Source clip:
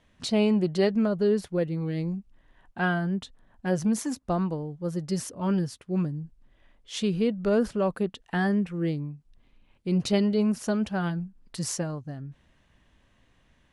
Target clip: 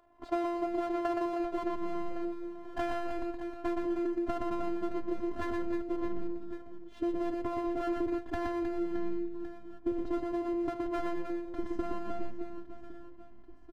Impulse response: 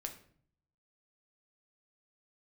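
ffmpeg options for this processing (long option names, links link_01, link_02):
-af "lowpass=frequency=810:width_type=q:width=4.1,aeval=exprs='max(val(0),0)':channel_layout=same,asubboost=boost=8.5:cutoff=210,alimiter=limit=-10.5dB:level=0:latency=1:release=310,highpass=frequency=82:width=0.5412,highpass=frequency=82:width=1.3066,afftfilt=real='hypot(re,im)*cos(PI*b)':imag='0':win_size=512:overlap=0.75,acompressor=threshold=-34dB:ratio=10,aecho=1:1:120|312|619.2|1111|1897:0.631|0.398|0.251|0.158|0.1,volume=6.5dB"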